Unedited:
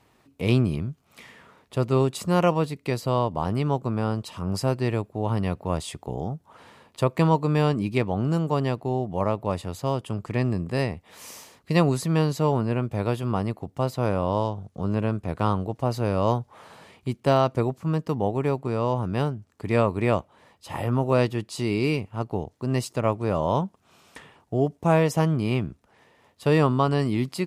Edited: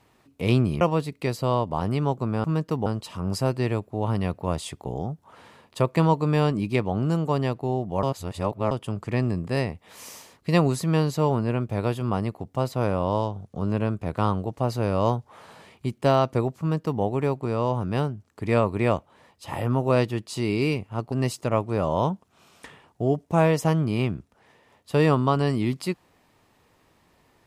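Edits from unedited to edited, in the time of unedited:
0.81–2.45 s: delete
9.25–9.93 s: reverse
17.82–18.24 s: copy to 4.08 s
22.34–22.64 s: delete

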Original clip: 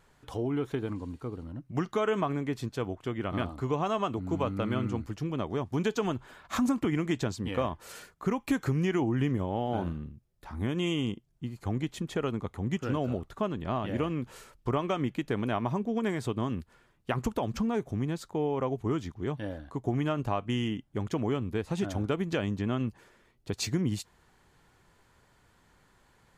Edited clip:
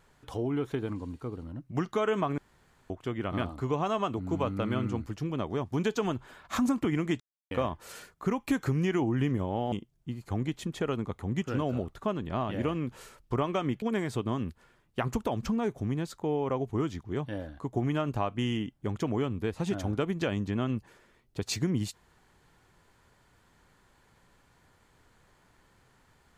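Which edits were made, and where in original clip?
2.38–2.90 s: room tone
7.20–7.51 s: mute
9.72–11.07 s: delete
15.17–15.93 s: delete

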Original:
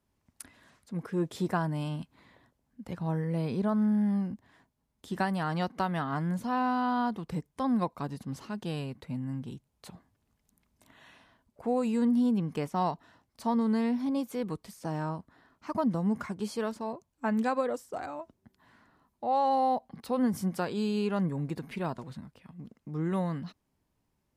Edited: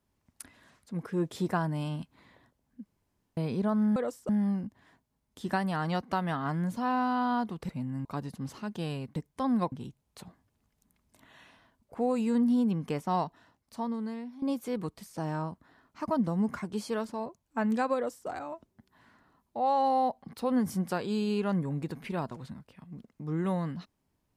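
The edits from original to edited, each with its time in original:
2.86–3.37 s: room tone
7.36–7.92 s: swap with 9.03–9.39 s
12.85–14.09 s: fade out, to -17.5 dB
17.62–17.95 s: copy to 3.96 s

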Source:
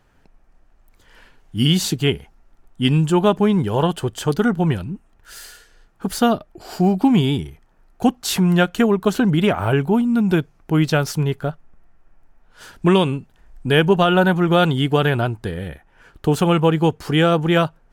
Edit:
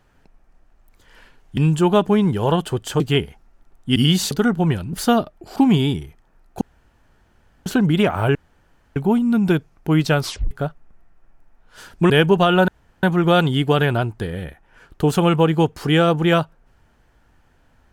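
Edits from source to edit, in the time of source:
1.57–1.92 s: swap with 2.88–4.31 s
4.93–6.07 s: delete
6.70–7.00 s: delete
8.05–9.10 s: room tone
9.79 s: insert room tone 0.61 s
11.04 s: tape stop 0.30 s
12.93–13.69 s: delete
14.27 s: insert room tone 0.35 s

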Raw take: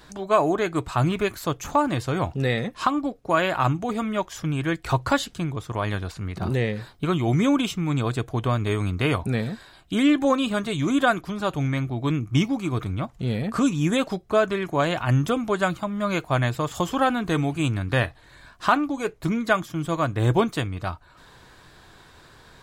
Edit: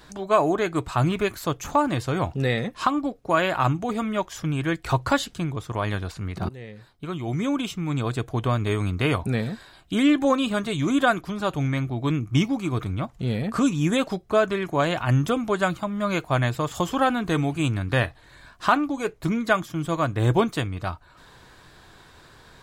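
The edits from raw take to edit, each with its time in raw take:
6.49–8.37 s: fade in, from -20 dB

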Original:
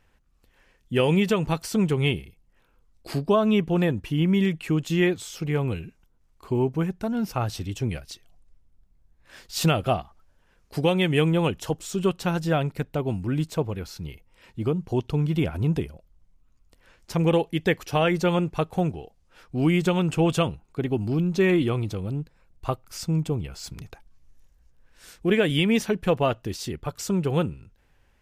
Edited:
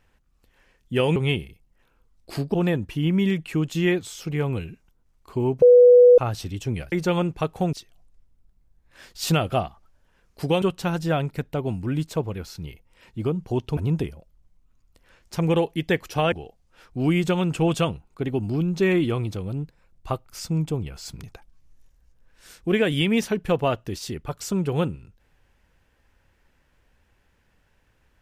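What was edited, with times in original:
1.16–1.93 s: delete
3.31–3.69 s: delete
6.77–7.33 s: bleep 491 Hz -8 dBFS
10.96–12.03 s: delete
15.18–15.54 s: delete
18.09–18.90 s: move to 8.07 s

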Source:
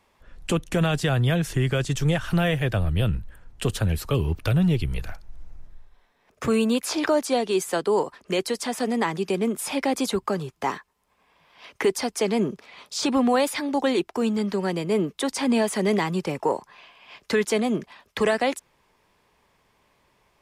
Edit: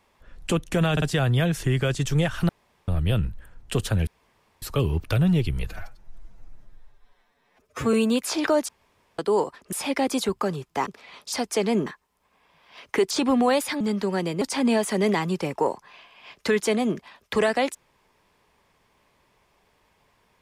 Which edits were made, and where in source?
0.92 s: stutter 0.05 s, 3 plays
2.39–2.78 s: room tone
3.97 s: insert room tone 0.55 s
5.02–6.53 s: stretch 1.5×
7.28–7.78 s: room tone
8.32–9.59 s: delete
10.73–11.97 s: swap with 12.51–12.97 s
13.67–14.31 s: delete
14.92–15.26 s: delete

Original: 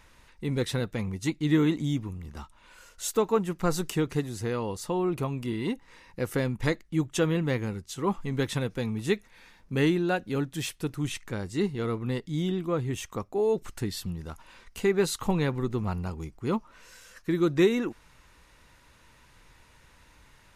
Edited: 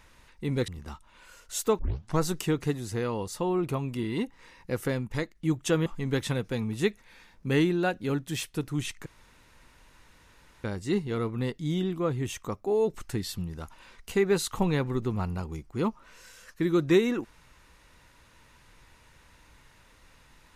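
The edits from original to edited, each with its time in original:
0.68–2.17 s: delete
3.28 s: tape start 0.42 s
6.20–6.84 s: fade out, to -6.5 dB
7.35–8.12 s: delete
11.32 s: insert room tone 1.58 s

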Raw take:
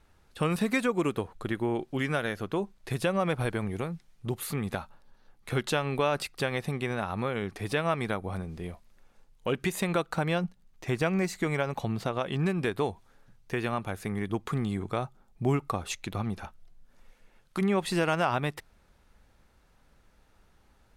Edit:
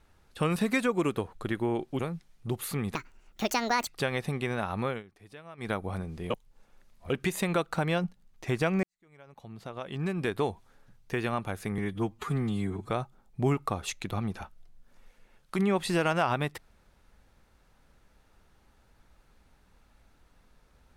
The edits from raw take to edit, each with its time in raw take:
1.99–3.78 s: delete
4.74–6.27 s: speed 166%
7.30–8.10 s: dip -19.5 dB, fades 0.13 s
8.70–9.50 s: reverse
11.23–12.76 s: fade in quadratic
14.18–14.93 s: stretch 1.5×

